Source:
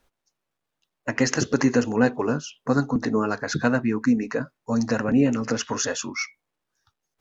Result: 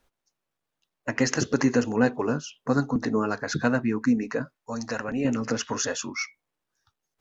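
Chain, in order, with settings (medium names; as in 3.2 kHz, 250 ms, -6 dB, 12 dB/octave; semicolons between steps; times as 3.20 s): 4.55–5.25 s: peaking EQ 170 Hz -9.5 dB 2.9 oct; trim -2 dB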